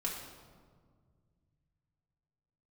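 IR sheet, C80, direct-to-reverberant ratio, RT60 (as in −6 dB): 5.5 dB, −3.0 dB, 1.8 s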